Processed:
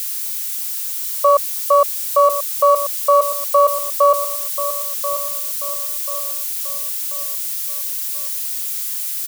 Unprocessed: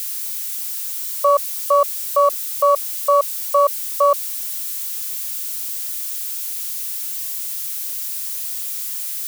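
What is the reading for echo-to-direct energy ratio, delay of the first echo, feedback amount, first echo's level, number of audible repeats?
−10.0 dB, 1,036 ms, 43%, −11.0 dB, 4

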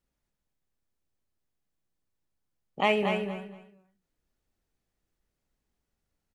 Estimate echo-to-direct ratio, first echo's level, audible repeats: −6.0 dB, −6.0 dB, 3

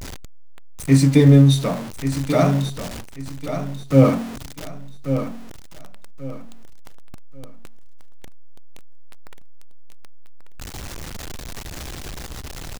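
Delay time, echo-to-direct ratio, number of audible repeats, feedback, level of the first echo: 1,137 ms, −9.0 dB, 3, 29%, −9.5 dB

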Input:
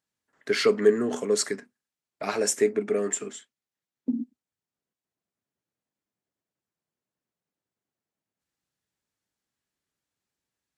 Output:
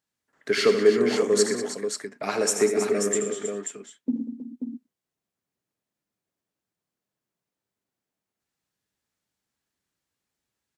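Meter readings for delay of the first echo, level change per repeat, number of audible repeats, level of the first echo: 79 ms, repeats not evenly spaced, 5, −9.5 dB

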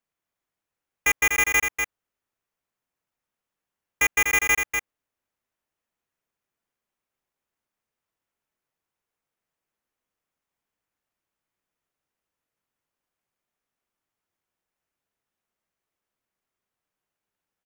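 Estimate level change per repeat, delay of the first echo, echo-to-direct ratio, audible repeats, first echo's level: repeats not evenly spaced, 245 ms, −5.5 dB, 1, −5.5 dB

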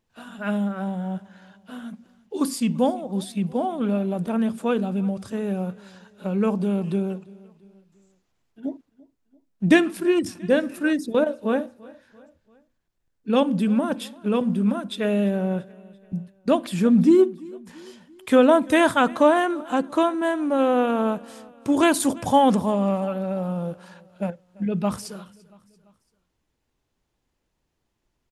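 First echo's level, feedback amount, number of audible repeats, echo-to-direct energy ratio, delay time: −23.0 dB, 50%, 2, −22.0 dB, 340 ms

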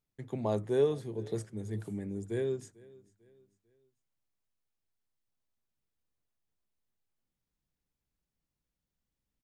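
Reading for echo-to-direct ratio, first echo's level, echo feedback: −22.5 dB, −23.0 dB, 40%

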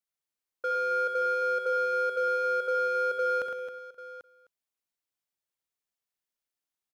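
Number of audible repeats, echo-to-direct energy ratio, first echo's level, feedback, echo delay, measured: 9, −2.5 dB, −7.5 dB, repeats not evenly spaced, 66 ms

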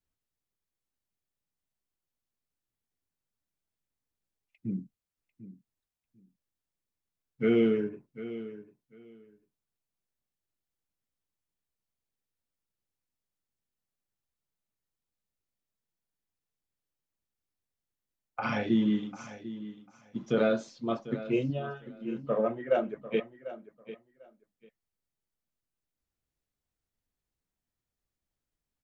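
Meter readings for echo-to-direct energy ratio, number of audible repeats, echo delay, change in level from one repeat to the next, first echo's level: −14.5 dB, 2, 746 ms, −15.0 dB, −14.5 dB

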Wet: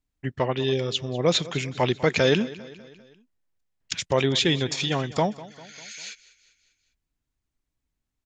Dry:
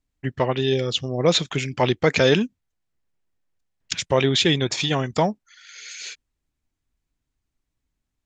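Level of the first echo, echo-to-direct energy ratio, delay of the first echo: −18.5 dB, −17.0 dB, 199 ms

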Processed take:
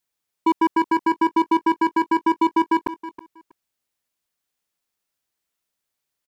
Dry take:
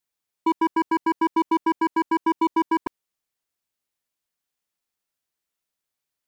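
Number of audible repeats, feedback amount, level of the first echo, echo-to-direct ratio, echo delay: 2, 18%, −15.0 dB, −15.0 dB, 321 ms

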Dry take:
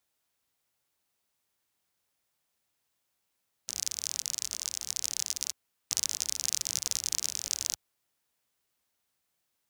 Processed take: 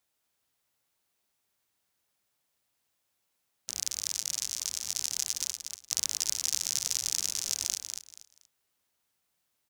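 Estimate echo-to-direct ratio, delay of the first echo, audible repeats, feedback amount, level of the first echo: −5.5 dB, 238 ms, 3, 24%, −6.0 dB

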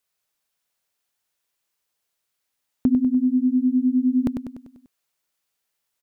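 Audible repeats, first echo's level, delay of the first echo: 6, −6.5 dB, 98 ms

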